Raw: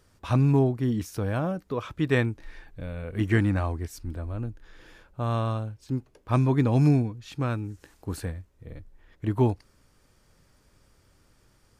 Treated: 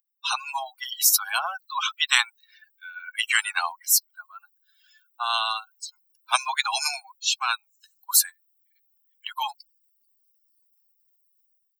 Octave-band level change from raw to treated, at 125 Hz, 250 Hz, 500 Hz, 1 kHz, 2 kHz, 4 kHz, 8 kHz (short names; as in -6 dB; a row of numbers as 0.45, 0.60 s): under -40 dB, under -40 dB, -16.0 dB, +7.0 dB, +10.0 dB, +20.0 dB, n/a